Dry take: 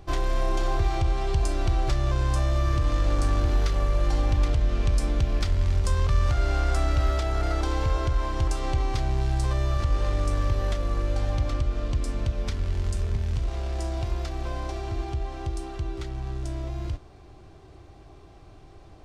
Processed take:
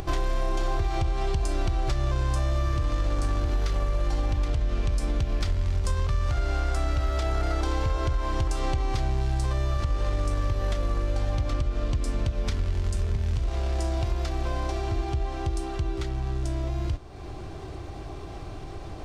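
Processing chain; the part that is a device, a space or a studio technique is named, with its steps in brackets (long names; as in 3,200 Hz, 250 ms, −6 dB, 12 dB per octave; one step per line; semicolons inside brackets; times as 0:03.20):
upward and downward compression (upward compression, threshold −31 dBFS; downward compressor, threshold −25 dBFS, peak gain reduction 8.5 dB)
level +3.5 dB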